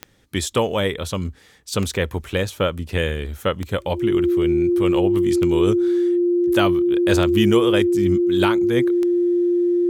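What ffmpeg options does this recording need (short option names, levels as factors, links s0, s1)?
-af "adeclick=t=4,bandreject=f=350:w=30"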